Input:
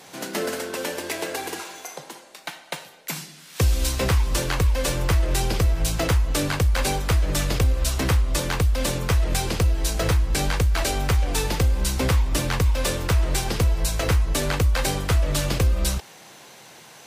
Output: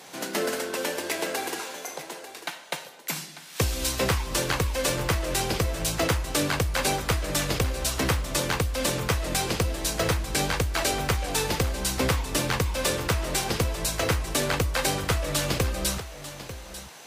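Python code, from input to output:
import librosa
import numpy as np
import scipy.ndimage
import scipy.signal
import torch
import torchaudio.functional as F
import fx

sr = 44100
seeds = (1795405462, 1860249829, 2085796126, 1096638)

p1 = fx.highpass(x, sr, hz=170.0, slope=6)
y = p1 + fx.echo_single(p1, sr, ms=894, db=-13.5, dry=0)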